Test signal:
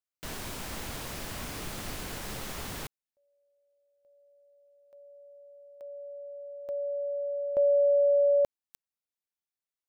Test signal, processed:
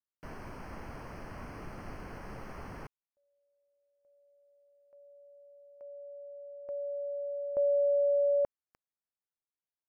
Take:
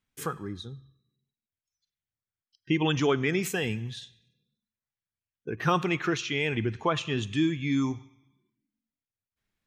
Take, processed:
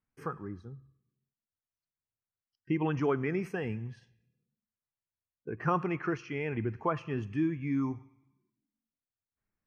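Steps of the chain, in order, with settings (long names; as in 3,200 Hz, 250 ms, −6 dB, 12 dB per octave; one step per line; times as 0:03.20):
moving average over 12 samples
parametric band 1,100 Hz +2 dB
level −4 dB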